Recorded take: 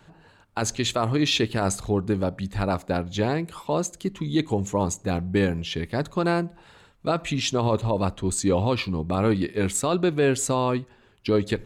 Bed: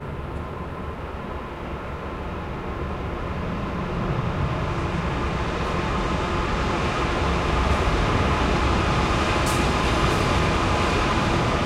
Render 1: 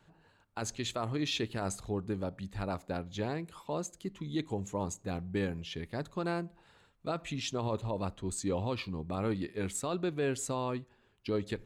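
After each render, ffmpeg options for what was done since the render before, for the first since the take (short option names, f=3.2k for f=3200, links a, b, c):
-af "volume=-11dB"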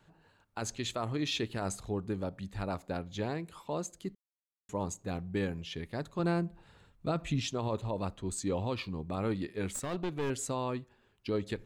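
-filter_complex "[0:a]asettb=1/sr,asplit=3[a][b][c];[a]atrim=end=6.194[d];[b]atrim=start=6.19:end=7.48,asetpts=PTS-STARTPTS,afade=t=in:d=0.004:c=qsin,afade=t=out:st=1.286:d=0.004:c=qsin,lowshelf=f=240:g=10.5[e];[c]atrim=start=7.476[f];[d][e]acrossfade=d=0.004:c1=hsin:c2=qsin[g];[g][f]acrossfade=d=0.004:c1=qsin:c2=hsin,asettb=1/sr,asplit=3[h][i][j];[h]atrim=end=9.704[k];[i]atrim=start=9.7:end=10.3,asetpts=PTS-STARTPTS,afade=t=in:d=0.004:c=qsin,afade=t=out:st=0.596:d=0.004:c=qsin,aeval=exprs='clip(val(0),-1,0.015)':c=same[l];[j]atrim=start=10.296[m];[k][l]acrossfade=d=0.004:c1=hsin:c2=qsin[n];[n][m]acrossfade=d=0.004:c1=qsin:c2=hsin,asplit=3[o][p][q];[o]atrim=end=4.15,asetpts=PTS-STARTPTS,afade=t=out:st=4.146:d=0.004:c=hsin[r];[p]atrim=start=4.15:end=4.69,asetpts=PTS-STARTPTS,volume=0[s];[q]atrim=start=4.69,asetpts=PTS-STARTPTS,afade=t=in:d=0.004:c=hsin[t];[r][s][t]concat=n=3:v=0:a=1"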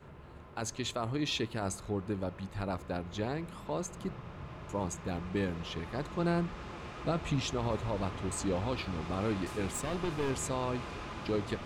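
-filter_complex "[1:a]volume=-20.5dB[a];[0:a][a]amix=inputs=2:normalize=0"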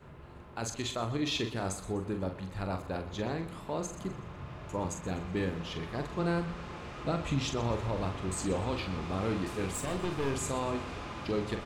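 -filter_complex "[0:a]asplit=2[a][b];[b]adelay=43,volume=-7dB[c];[a][c]amix=inputs=2:normalize=0,aecho=1:1:124|248|372|496:0.178|0.0729|0.0299|0.0123"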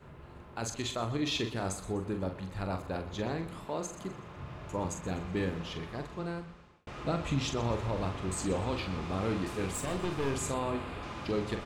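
-filter_complex "[0:a]asettb=1/sr,asplit=3[a][b][c];[a]atrim=end=3.654[d];[b]atrim=start=3.65:end=4.37,asetpts=PTS-STARTPTS,afade=t=in:d=0.004:c=qsin,afade=t=out:st=0.716:d=0.004:c=qsin,lowshelf=f=130:g=-9.5[e];[c]atrim=start=4.366[f];[d][e]acrossfade=d=0.004:c1=hsin:c2=qsin[g];[g][f]acrossfade=d=0.004:c1=qsin:c2=hsin,asettb=1/sr,asplit=3[h][i][j];[h]atrim=end=10.544[k];[i]atrim=start=10.54:end=11.03,asetpts=PTS-STARTPTS,afade=t=in:d=0.004:c=qsin,afade=t=out:st=0.486:d=0.004:c=qsin,equalizer=f=5.9k:w=2.7:g=-14.5[l];[j]atrim=start=11.026[m];[k][l]acrossfade=d=0.004:c1=hsin:c2=qsin[n];[n][m]acrossfade=d=0.004:c1=qsin:c2=hsin,asplit=2[o][p];[o]atrim=end=6.87,asetpts=PTS-STARTPTS,afade=t=out:st=5.58:d=1.29[q];[p]atrim=start=6.87,asetpts=PTS-STARTPTS,afade=t=in:d=0.004:c=hsin[r];[q][r]concat=n=2:v=0:a=1"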